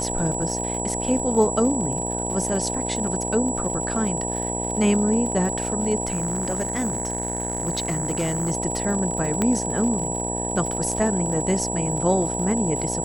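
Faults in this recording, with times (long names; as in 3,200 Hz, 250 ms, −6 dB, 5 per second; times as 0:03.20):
mains buzz 60 Hz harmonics 16 −29 dBFS
surface crackle 70 per second −30 dBFS
whistle 7,800 Hz −28 dBFS
0:06.05–0:08.52: clipping −19.5 dBFS
0:09.42: click −9 dBFS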